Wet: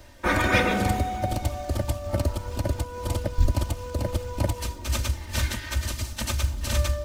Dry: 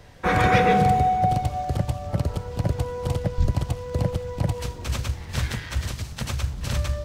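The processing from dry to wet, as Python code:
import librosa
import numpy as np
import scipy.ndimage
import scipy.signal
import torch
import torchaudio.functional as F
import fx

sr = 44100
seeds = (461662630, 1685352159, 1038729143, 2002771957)

y = fx.high_shelf(x, sr, hz=7700.0, db=8.5)
y = y + 0.89 * np.pad(y, (int(3.3 * sr / 1000.0), 0))[:len(y)]
y = fx.quant_companded(y, sr, bits=8)
y = fx.am_noise(y, sr, seeds[0], hz=5.7, depth_pct=55)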